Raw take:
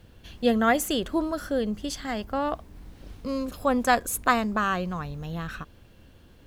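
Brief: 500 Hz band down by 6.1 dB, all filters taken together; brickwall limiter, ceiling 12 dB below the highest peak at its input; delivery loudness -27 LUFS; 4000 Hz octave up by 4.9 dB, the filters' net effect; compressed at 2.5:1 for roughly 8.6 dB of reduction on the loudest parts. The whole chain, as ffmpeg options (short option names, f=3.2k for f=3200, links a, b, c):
-af "equalizer=f=500:t=o:g=-7.5,equalizer=f=4k:t=o:g=6.5,acompressor=threshold=-30dB:ratio=2.5,volume=9.5dB,alimiter=limit=-17dB:level=0:latency=1"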